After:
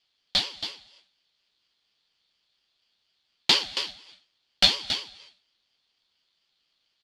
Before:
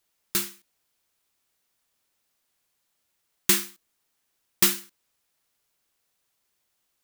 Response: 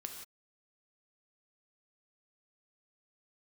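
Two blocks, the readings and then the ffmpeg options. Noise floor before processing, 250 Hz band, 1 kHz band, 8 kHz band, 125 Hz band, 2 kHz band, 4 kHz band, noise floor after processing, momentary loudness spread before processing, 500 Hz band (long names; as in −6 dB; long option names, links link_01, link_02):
−76 dBFS, −6.0 dB, +4.5 dB, −10.0 dB, −2.5 dB, +2.5 dB, +10.0 dB, −76 dBFS, 14 LU, +0.5 dB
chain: -filter_complex "[0:a]flanger=delay=9.8:depth=1.3:regen=-42:speed=0.73:shape=sinusoidal,lowpass=frequency=3900:width_type=q:width=8,aecho=1:1:276:0.335,asplit=2[link_01][link_02];[1:a]atrim=start_sample=2205,asetrate=23373,aresample=44100[link_03];[link_02][link_03]afir=irnorm=-1:irlink=0,volume=-14.5dB[link_04];[link_01][link_04]amix=inputs=2:normalize=0,aeval=exprs='val(0)*sin(2*PI*580*n/s+580*0.35/4.2*sin(2*PI*4.2*n/s))':channel_layout=same,volume=3dB"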